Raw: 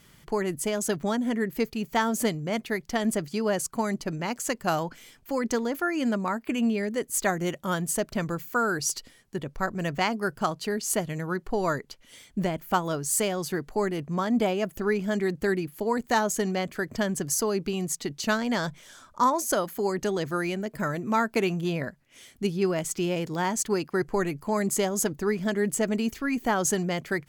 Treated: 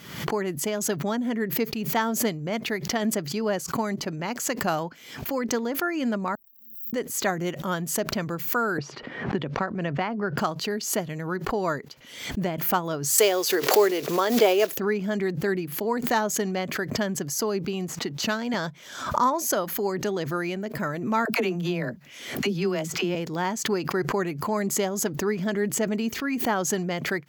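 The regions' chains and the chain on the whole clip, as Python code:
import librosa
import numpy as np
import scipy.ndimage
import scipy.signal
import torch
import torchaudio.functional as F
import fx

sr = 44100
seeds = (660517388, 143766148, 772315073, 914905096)

y = fx.chain(x, sr, fx.dead_time(dead_ms=0.12),
    fx.cheby2_bandstop(low_hz=150.0, high_hz=6700.0, order=4, stop_db=60),
    fx.pre_swell(db_per_s=57.0), at=(6.35, 6.93))
y = fx.chain(y, sr, fx.bessel_lowpass(hz=2300.0, order=2),
    fx.band_squash(depth_pct=100), at=(8.78, 10.38))
y = fx.chain(y, sr, fx.block_float(bits=5),
    fx.highpass_res(hz=420.0, q=2.7),
    fx.peak_eq(hz=15000.0, db=11.5, octaves=2.9), at=(13.18, 14.78))
y = fx.chain(y, sr, fx.halfwave_gain(db=-3.0),
    fx.band_squash(depth_pct=40), at=(17.88, 18.54))
y = fx.chain(y, sr, fx.dispersion(late='lows', ms=57.0, hz=420.0),
    fx.band_squash(depth_pct=70), at=(21.25, 23.15))
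y = scipy.signal.sosfilt(scipy.signal.butter(2, 120.0, 'highpass', fs=sr, output='sos'), y)
y = fx.peak_eq(y, sr, hz=9200.0, db=-13.0, octaves=0.46)
y = fx.pre_swell(y, sr, db_per_s=71.0)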